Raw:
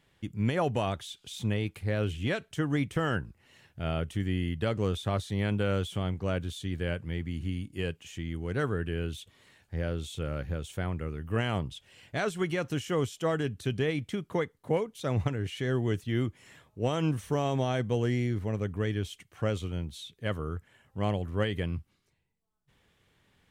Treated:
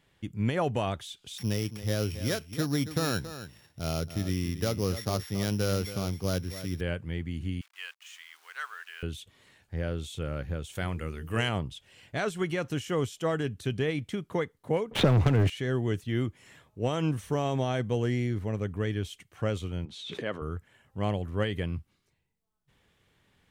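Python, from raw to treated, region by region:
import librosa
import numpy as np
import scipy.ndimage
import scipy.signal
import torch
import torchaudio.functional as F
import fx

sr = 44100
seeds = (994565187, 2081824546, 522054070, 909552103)

y = fx.chain(x, sr, fx.sample_sort(block=8),
    fx.highpass(hz=60.0, slope=12),
    fx.echo_single(ms=276, db=-12.0), at=(1.38, 6.81))
y = fx.chain(y, sr, fx.delta_hold(step_db=-51.0),
    fx.highpass(hz=1100.0, slope=24),
    fx.high_shelf(hz=9300.0, db=-4.5), at=(7.61, 9.03))
y = fx.chain(y, sr, fx.high_shelf(hz=2400.0, db=10.5),
    fx.hum_notches(base_hz=50, count=9), at=(10.75, 11.49))
y = fx.chain(y, sr, fx.high_shelf(hz=2700.0, db=-9.0),
    fx.leveller(passes=3),
    fx.band_squash(depth_pct=100), at=(14.91, 15.5))
y = fx.chain(y, sr, fx.bandpass_edges(low_hz=250.0, high_hz=7900.0),
    fx.high_shelf(hz=5000.0, db=-11.5),
    fx.pre_swell(db_per_s=44.0), at=(19.85, 20.42))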